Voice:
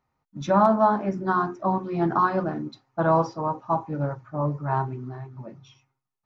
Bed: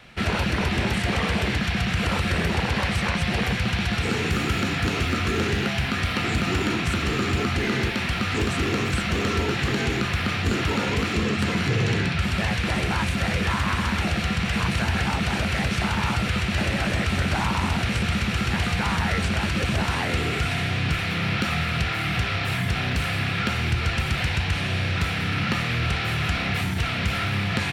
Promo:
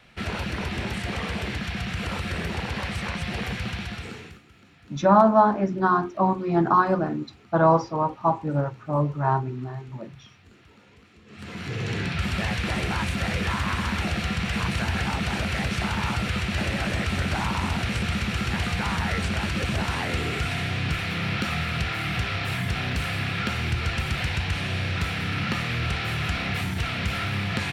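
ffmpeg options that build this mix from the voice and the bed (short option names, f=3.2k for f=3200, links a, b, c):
-filter_complex "[0:a]adelay=4550,volume=2.5dB[a];[1:a]volume=21.5dB,afade=t=out:st=3.65:d=0.76:silence=0.0630957,afade=t=in:st=11.26:d=0.98:silence=0.0421697[b];[a][b]amix=inputs=2:normalize=0"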